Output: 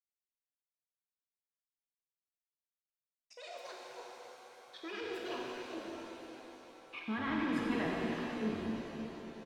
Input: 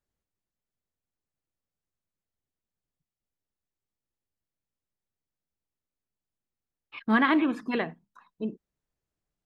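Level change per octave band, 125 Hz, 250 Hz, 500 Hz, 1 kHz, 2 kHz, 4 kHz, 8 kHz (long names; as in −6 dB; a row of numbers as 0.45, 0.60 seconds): −1.0 dB, −7.5 dB, −3.0 dB, −8.5 dB, −9.0 dB, −3.0 dB, can't be measured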